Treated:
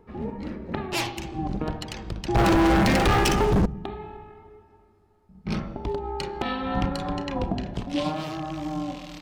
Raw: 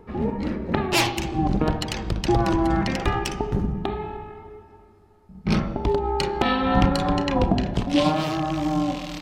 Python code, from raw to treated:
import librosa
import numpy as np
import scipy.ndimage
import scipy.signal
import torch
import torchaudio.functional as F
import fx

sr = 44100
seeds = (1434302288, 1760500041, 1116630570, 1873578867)

y = fx.leveller(x, sr, passes=5, at=(2.35, 3.66))
y = F.gain(torch.from_numpy(y), -7.0).numpy()